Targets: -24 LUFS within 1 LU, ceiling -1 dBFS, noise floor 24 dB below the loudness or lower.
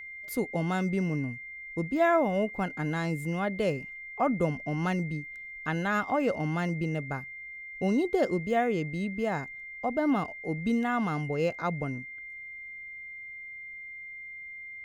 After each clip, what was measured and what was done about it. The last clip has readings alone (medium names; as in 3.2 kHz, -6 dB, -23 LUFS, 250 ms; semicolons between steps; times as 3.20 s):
steady tone 2.1 kHz; tone level -40 dBFS; loudness -31.0 LUFS; peak level -13.0 dBFS; loudness target -24.0 LUFS
-> band-stop 2.1 kHz, Q 30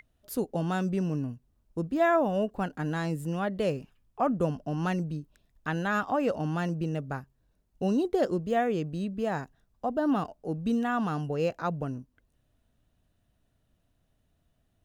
steady tone not found; loudness -30.0 LUFS; peak level -13.0 dBFS; loudness target -24.0 LUFS
-> trim +6 dB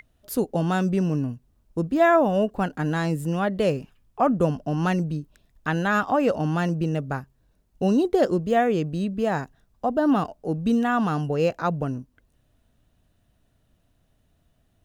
loudness -24.0 LUFS; peak level -7.0 dBFS; noise floor -67 dBFS